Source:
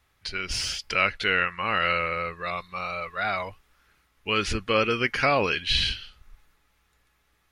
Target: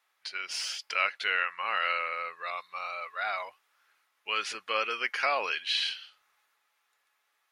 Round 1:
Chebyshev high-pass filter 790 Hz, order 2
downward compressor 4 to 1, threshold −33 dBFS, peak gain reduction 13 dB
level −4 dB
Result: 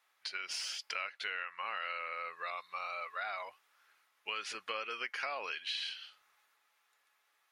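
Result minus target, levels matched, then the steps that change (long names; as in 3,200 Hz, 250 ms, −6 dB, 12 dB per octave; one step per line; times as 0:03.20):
downward compressor: peak gain reduction +13 dB
remove: downward compressor 4 to 1, threshold −33 dBFS, peak gain reduction 13 dB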